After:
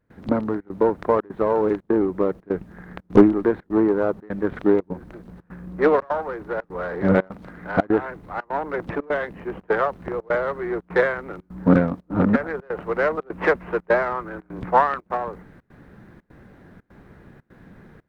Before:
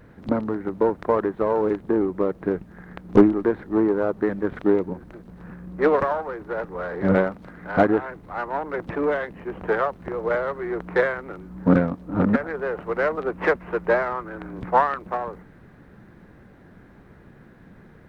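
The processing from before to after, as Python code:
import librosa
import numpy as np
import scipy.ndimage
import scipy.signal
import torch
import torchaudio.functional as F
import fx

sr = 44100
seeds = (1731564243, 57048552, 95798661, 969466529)

y = fx.step_gate(x, sr, bpm=150, pattern='.xxxxx.xxxxx', floor_db=-24.0, edge_ms=4.5)
y = F.gain(torch.from_numpy(y), 1.5).numpy()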